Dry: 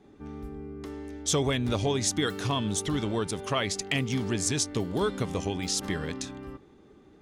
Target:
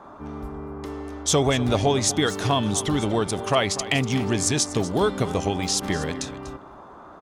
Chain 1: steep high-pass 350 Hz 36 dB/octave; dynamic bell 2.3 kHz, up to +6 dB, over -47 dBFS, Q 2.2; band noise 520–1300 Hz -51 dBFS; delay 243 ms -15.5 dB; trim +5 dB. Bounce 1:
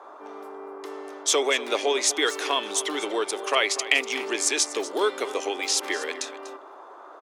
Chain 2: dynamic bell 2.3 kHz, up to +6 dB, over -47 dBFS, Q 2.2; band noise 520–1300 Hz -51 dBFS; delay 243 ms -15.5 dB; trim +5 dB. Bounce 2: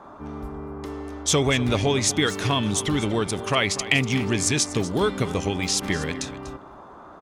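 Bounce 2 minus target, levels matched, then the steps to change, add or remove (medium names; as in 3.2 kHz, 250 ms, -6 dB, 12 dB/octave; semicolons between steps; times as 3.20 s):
2 kHz band +3.5 dB
change: dynamic bell 710 Hz, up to +6 dB, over -47 dBFS, Q 2.2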